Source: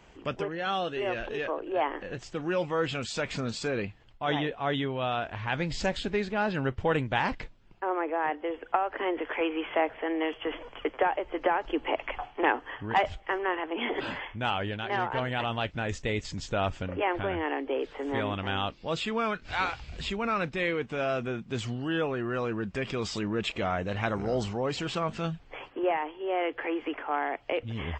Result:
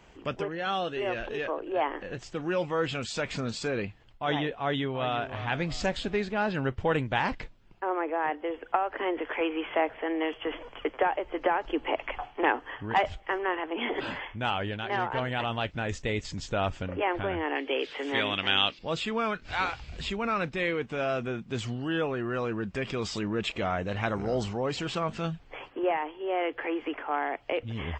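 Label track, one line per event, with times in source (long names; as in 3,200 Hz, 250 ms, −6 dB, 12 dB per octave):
4.590000	5.270000	delay throw 340 ms, feedback 40%, level −11.5 dB
17.550000	18.790000	meter weighting curve D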